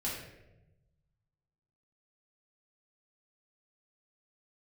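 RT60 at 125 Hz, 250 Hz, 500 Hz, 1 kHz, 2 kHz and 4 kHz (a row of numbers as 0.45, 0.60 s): 1.9, 1.3, 1.1, 0.85, 0.80, 0.60 s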